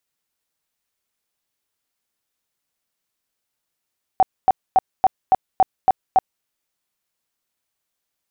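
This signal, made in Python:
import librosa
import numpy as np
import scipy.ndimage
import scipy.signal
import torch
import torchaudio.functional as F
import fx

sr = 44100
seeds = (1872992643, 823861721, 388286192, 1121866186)

y = fx.tone_burst(sr, hz=759.0, cycles=21, every_s=0.28, bursts=8, level_db=-9.0)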